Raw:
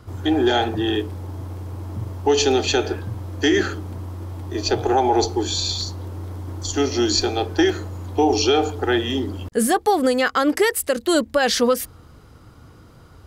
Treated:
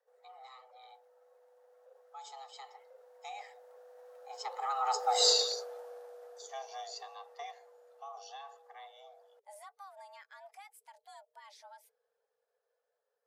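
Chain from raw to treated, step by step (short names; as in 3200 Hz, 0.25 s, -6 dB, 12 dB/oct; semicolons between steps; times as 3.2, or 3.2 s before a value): bin magnitudes rounded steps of 15 dB; Doppler pass-by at 5.27, 19 m/s, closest 1.7 m; frequency shift +400 Hz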